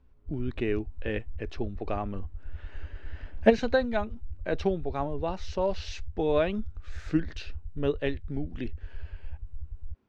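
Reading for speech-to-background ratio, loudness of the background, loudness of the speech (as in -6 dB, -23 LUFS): 13.5 dB, -44.5 LUFS, -31.0 LUFS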